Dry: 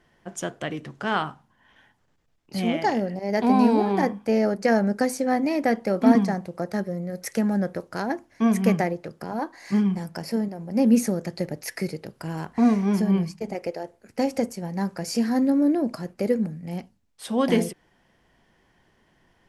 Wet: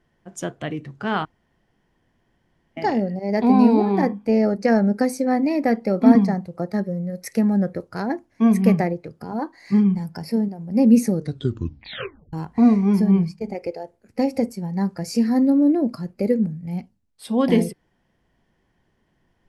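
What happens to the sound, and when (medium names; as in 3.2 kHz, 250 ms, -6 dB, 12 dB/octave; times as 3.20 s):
1.25–2.77 s: room tone
11.12 s: tape stop 1.21 s
whole clip: spectral noise reduction 7 dB; bass shelf 430 Hz +7 dB; trim -1 dB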